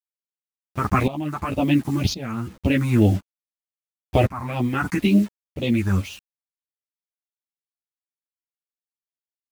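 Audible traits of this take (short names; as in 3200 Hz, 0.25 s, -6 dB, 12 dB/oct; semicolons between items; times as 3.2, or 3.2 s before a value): phasing stages 4, 2 Hz, lowest notch 490–1600 Hz; a quantiser's noise floor 8-bit, dither none; tremolo saw up 0.94 Hz, depth 90%; a shimmering, thickened sound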